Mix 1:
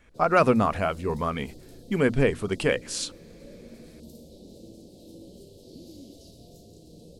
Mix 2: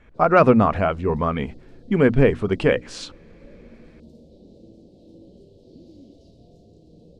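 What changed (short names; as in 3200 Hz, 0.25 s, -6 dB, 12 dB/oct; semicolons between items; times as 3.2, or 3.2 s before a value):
speech +7.0 dB; master: add tape spacing loss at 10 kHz 22 dB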